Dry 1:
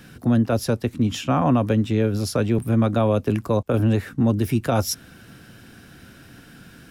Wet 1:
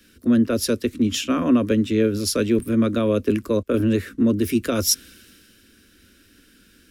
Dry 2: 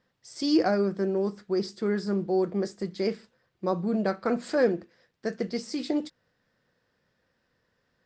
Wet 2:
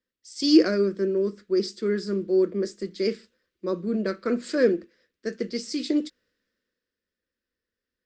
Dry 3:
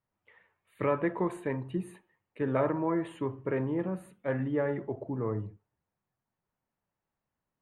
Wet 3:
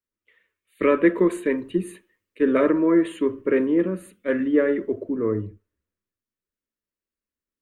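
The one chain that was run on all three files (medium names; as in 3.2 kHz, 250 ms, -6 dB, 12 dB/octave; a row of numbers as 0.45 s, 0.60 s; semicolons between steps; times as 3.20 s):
static phaser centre 330 Hz, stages 4; three bands expanded up and down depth 40%; peak normalisation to -6 dBFS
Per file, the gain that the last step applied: +4.5 dB, +4.0 dB, +12.5 dB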